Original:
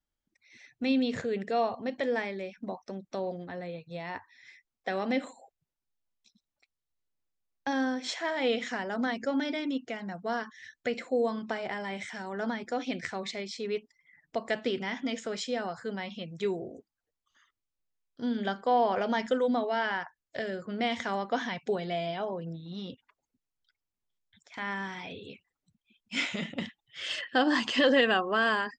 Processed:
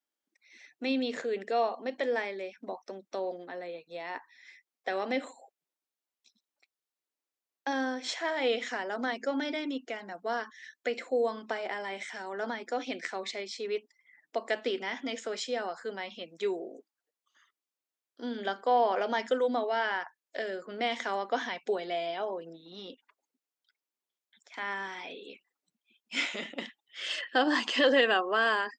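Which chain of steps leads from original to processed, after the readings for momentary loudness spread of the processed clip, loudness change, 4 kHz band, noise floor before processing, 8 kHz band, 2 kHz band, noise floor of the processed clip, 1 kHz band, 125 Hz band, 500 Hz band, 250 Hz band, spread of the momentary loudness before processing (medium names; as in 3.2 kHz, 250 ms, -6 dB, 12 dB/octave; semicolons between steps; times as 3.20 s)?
15 LU, -0.5 dB, 0.0 dB, under -85 dBFS, 0.0 dB, 0.0 dB, under -85 dBFS, 0.0 dB, under -10 dB, 0.0 dB, -5.0 dB, 14 LU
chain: high-pass 280 Hz 24 dB/octave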